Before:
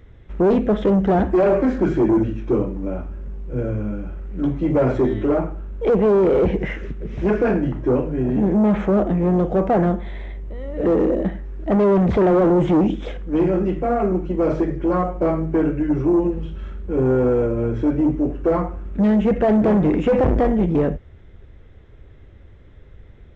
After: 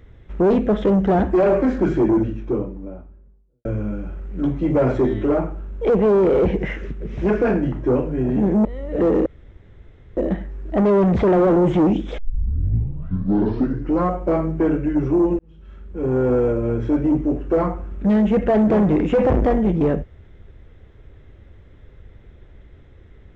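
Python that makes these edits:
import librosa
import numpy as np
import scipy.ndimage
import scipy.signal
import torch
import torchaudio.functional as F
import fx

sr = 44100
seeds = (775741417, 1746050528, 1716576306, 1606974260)

y = fx.studio_fade_out(x, sr, start_s=1.9, length_s=1.75)
y = fx.edit(y, sr, fx.cut(start_s=8.65, length_s=1.85),
    fx.insert_room_tone(at_s=11.11, length_s=0.91),
    fx.tape_start(start_s=13.12, length_s=1.89),
    fx.fade_in_span(start_s=16.33, length_s=0.96), tone=tone)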